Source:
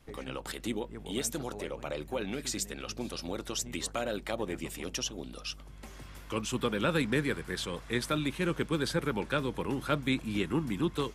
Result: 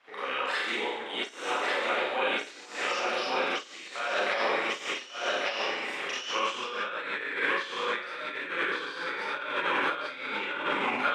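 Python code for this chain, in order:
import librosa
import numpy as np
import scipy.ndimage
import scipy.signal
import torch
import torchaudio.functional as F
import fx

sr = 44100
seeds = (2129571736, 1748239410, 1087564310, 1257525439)

y = fx.tape_stop_end(x, sr, length_s=0.39)
y = fx.tilt_shelf(y, sr, db=-7.5, hz=890.0)
y = y + 10.0 ** (-3.0 / 20.0) * np.pad(y, (int(1145 * sr / 1000.0), 0))[:len(y)]
y = fx.rev_schroeder(y, sr, rt60_s=1.1, comb_ms=31, drr_db=-9.5)
y = fx.over_compress(y, sr, threshold_db=-25.0, ratio=-0.5)
y = fx.bandpass_edges(y, sr, low_hz=530.0, high_hz=2100.0)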